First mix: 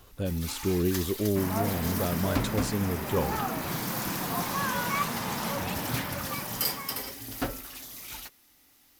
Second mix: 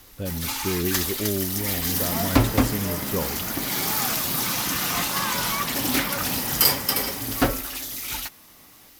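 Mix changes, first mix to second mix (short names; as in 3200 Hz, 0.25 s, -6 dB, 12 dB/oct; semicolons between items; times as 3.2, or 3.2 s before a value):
first sound +10.5 dB; second sound: entry +0.60 s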